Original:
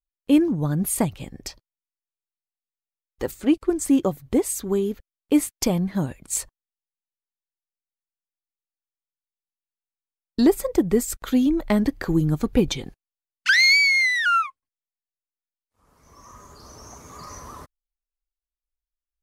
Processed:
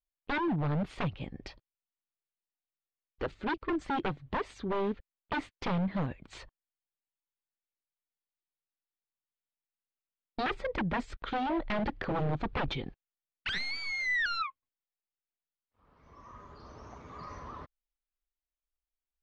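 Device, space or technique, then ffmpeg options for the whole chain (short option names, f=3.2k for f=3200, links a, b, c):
synthesiser wavefolder: -af "aeval=exprs='0.0841*(abs(mod(val(0)/0.0841+3,4)-2)-1)':c=same,lowpass=f=3.7k:w=0.5412,lowpass=f=3.7k:w=1.3066,volume=-4dB"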